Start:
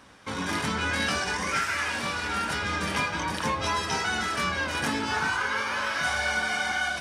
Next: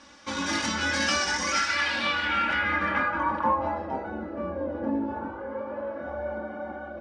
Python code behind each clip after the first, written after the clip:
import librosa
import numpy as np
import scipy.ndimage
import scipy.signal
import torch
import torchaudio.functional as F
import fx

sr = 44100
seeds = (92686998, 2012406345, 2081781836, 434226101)

y = fx.low_shelf(x, sr, hz=91.0, db=-5.5)
y = y + 0.87 * np.pad(y, (int(3.5 * sr / 1000.0), 0))[:len(y)]
y = fx.filter_sweep_lowpass(y, sr, from_hz=6000.0, to_hz=500.0, start_s=1.49, end_s=4.23, q=2.1)
y = y * librosa.db_to_amplitude(-2.0)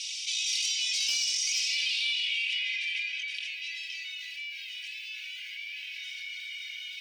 y = scipy.signal.sosfilt(scipy.signal.butter(12, 2400.0, 'highpass', fs=sr, output='sos'), x)
y = 10.0 ** (-19.5 / 20.0) * np.tanh(y / 10.0 ** (-19.5 / 20.0))
y = fx.env_flatten(y, sr, amount_pct=70)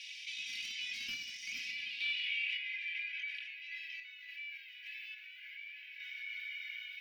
y = fx.curve_eq(x, sr, hz=(110.0, 260.0, 370.0, 780.0, 1700.0, 3200.0, 8200.0, 13000.0), db=(0, 10, -6, -19, 0, -14, -28, -10))
y = fx.tremolo_random(y, sr, seeds[0], hz=3.5, depth_pct=55)
y = y * librosa.db_to_amplitude(4.0)